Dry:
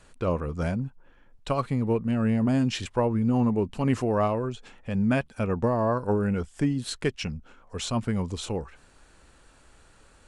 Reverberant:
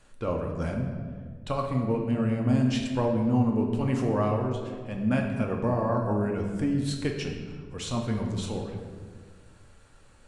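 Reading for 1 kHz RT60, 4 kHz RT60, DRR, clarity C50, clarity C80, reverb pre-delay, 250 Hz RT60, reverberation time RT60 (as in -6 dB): 1.4 s, 1.0 s, 1.0 dB, 4.0 dB, 6.0 dB, 4 ms, 2.0 s, 1.7 s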